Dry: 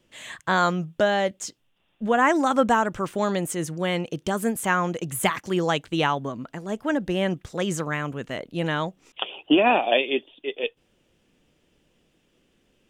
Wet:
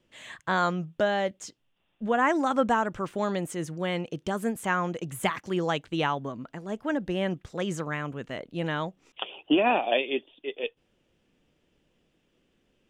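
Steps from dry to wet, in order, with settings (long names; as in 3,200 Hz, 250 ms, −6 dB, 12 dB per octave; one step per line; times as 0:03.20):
high-shelf EQ 6,900 Hz −8.5 dB
level −4 dB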